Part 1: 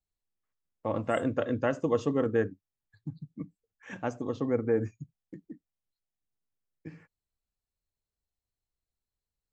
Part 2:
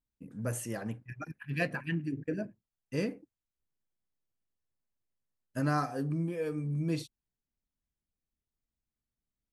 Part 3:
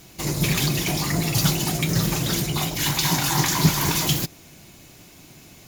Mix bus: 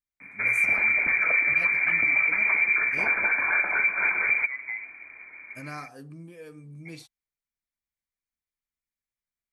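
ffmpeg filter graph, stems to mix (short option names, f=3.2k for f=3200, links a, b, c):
-filter_complex "[0:a]highpass=190,acompressor=threshold=-30dB:ratio=3,volume=-4.5dB[a];[1:a]volume=-7dB[b];[2:a]highpass=52,adelay=200,volume=2dB[c];[a][c]amix=inputs=2:normalize=0,lowpass=f=2.1k:t=q:w=0.5098,lowpass=f=2.1k:t=q:w=0.6013,lowpass=f=2.1k:t=q:w=0.9,lowpass=f=2.1k:t=q:w=2.563,afreqshift=-2500,alimiter=limit=-13.5dB:level=0:latency=1:release=271,volume=0dB[d];[b][d]amix=inputs=2:normalize=0,tiltshelf=f=1.2k:g=-4.5,alimiter=limit=-14dB:level=0:latency=1:release=107"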